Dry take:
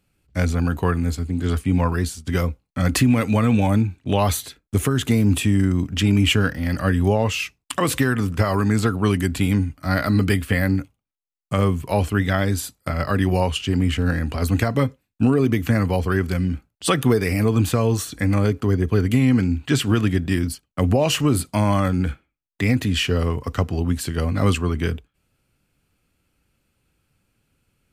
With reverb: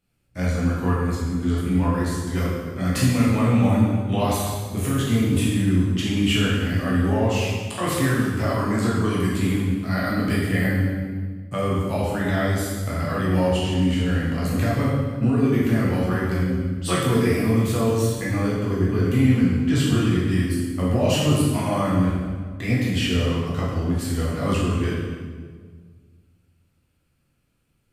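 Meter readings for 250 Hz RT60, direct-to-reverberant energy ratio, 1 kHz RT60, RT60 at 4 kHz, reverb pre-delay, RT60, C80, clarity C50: 2.0 s, -7.0 dB, 1.5 s, 1.3 s, 8 ms, 1.7 s, 2.0 dB, -0.5 dB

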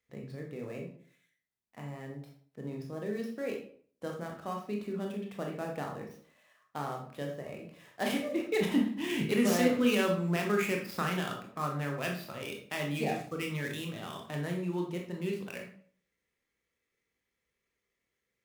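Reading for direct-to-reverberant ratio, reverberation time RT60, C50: 0.5 dB, 0.55 s, 6.0 dB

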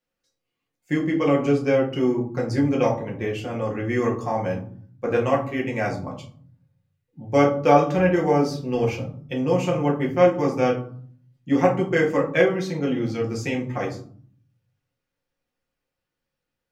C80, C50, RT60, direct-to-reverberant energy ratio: 14.0 dB, 9.5 dB, 0.50 s, -3.0 dB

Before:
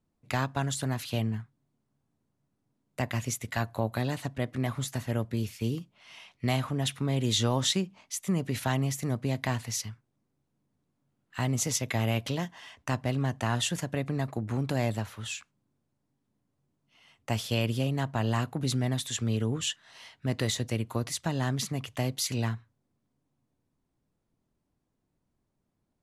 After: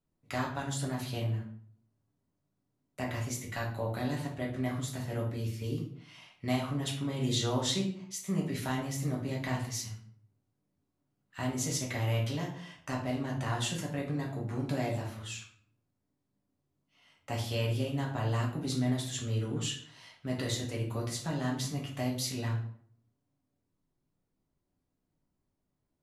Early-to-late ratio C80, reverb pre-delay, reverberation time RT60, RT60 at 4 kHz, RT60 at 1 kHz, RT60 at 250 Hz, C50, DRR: 11.0 dB, 5 ms, 0.60 s, 0.40 s, 0.55 s, 0.65 s, 6.5 dB, -2.0 dB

